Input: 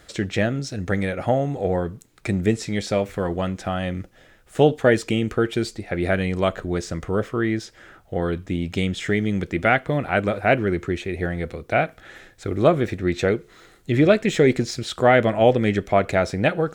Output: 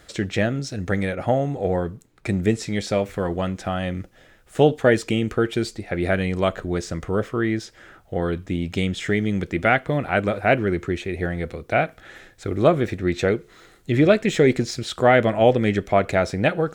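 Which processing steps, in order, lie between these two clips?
0:01.15–0:02.29: one half of a high-frequency compander decoder only

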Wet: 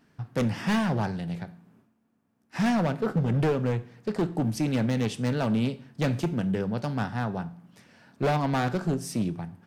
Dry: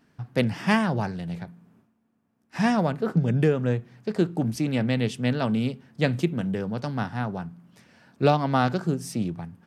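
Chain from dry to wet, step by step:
hard clipping −20.5 dBFS, distortion −9 dB
convolution reverb RT60 0.55 s, pre-delay 8 ms, DRR 14 dB

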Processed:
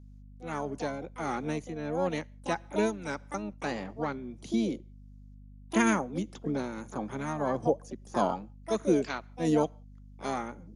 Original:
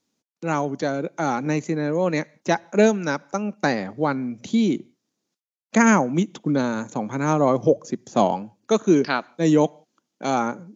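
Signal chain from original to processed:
shaped tremolo triangle 1.6 Hz, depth 55%
pitch-shifted copies added +7 semitones −7 dB
mains hum 50 Hz, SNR 18 dB
level −8.5 dB

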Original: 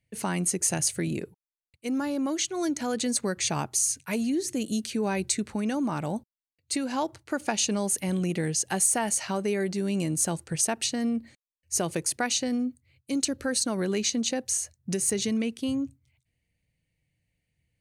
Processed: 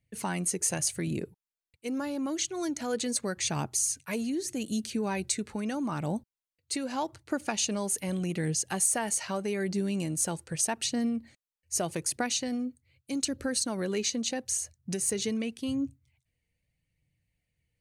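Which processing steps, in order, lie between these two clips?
flanger 0.82 Hz, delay 0.1 ms, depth 2.3 ms, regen +64%
level +1.5 dB

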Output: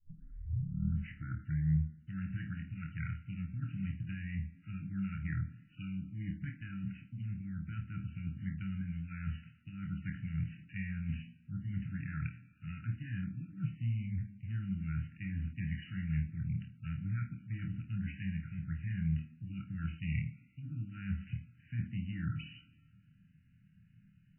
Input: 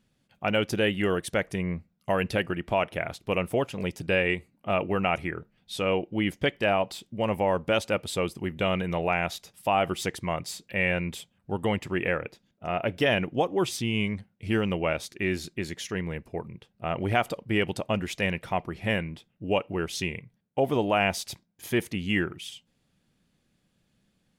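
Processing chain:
turntable start at the beginning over 1.92 s
treble cut that deepens with the level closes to 1,300 Hz, closed at −23 dBFS
low-shelf EQ 110 Hz +9 dB
reversed playback
downward compressor 10 to 1, threshold −36 dBFS, peak gain reduction 20.5 dB
reversed playback
linear-phase brick-wall band-stop 310–1,300 Hz
flutter between parallel walls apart 4.4 metres, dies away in 0.25 s
on a send at −10 dB: convolution reverb RT60 1.1 s, pre-delay 3 ms
on the sum: level −2.5 dB
MP3 8 kbit/s 8,000 Hz

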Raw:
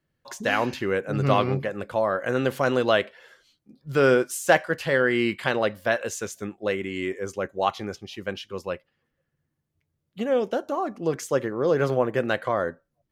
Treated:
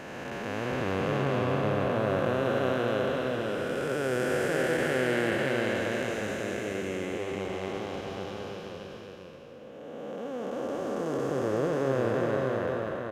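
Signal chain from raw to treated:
spectrum smeared in time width 1,050 ms
single-tap delay 534 ms −4 dB

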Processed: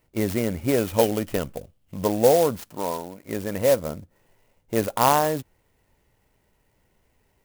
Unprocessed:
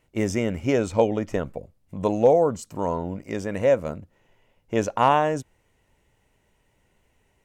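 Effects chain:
0:00.78–0:02.06: parametric band 3,100 Hz +14.5 dB 0.46 octaves
0:02.70–0:03.23: high-pass filter 230 Hz → 870 Hz 6 dB per octave
converter with an unsteady clock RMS 0.058 ms

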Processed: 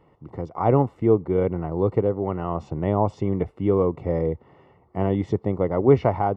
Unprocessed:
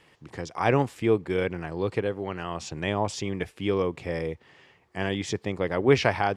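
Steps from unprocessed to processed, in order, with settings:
low-shelf EQ 120 Hz +4.5 dB
in parallel at −3 dB: speech leveller within 4 dB
on the sum: Savitzky-Golay smoothing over 65 samples

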